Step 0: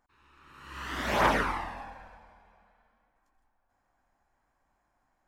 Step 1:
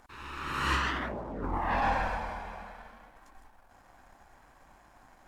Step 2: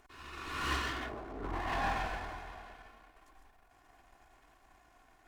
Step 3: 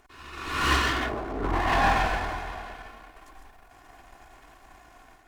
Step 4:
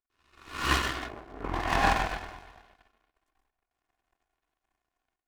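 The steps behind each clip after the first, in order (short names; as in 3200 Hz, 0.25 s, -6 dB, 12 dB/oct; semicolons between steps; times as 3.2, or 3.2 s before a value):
treble ducked by the level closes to 540 Hz, closed at -26 dBFS; negative-ratio compressor -44 dBFS, ratio -1; sample leveller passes 1; gain +9 dB
minimum comb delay 2.8 ms; gain -4 dB
AGC gain up to 7.5 dB; gain +4 dB
power-law curve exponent 2; gain +3.5 dB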